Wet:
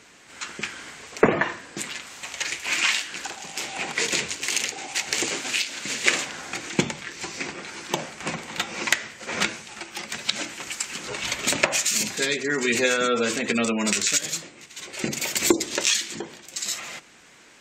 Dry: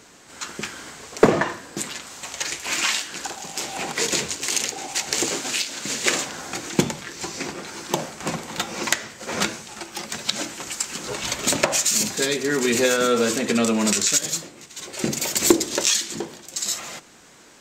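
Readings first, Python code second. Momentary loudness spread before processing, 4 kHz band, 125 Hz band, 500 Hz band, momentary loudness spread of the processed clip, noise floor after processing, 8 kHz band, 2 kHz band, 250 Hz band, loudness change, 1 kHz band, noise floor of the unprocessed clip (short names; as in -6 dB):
14 LU, -1.0 dB, -4.0 dB, -3.5 dB, 12 LU, -51 dBFS, -3.5 dB, +2.0 dB, -4.0 dB, -2.0 dB, -2.5 dB, -49 dBFS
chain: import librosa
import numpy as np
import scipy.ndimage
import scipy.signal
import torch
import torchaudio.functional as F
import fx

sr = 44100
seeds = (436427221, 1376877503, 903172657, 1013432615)

y = fx.spec_gate(x, sr, threshold_db=-30, keep='strong')
y = fx.cheby_harmonics(y, sr, harmonics=(7,), levels_db=(-36,), full_scale_db=-3.0)
y = fx.peak_eq(y, sr, hz=2300.0, db=7.5, octaves=1.2)
y = y * librosa.db_to_amplitude(-3.5)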